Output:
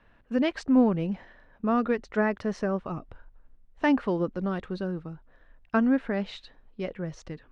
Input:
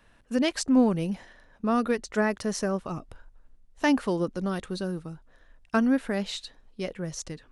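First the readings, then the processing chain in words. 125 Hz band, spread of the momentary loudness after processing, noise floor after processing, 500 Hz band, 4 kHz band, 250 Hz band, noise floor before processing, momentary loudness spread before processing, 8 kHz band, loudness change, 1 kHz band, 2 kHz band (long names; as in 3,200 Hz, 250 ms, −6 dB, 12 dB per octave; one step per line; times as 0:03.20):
0.0 dB, 15 LU, −60 dBFS, 0.0 dB, −7.0 dB, 0.0 dB, −60 dBFS, 14 LU, below −15 dB, 0.0 dB, 0.0 dB, −1.0 dB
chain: low-pass filter 2,600 Hz 12 dB per octave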